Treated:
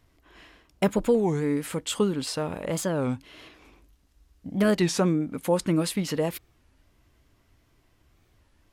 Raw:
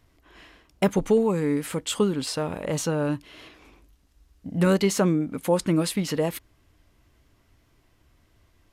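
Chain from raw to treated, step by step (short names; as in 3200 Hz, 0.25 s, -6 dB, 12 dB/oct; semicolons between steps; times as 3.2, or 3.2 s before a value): record warp 33 1/3 rpm, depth 250 cents; gain -1.5 dB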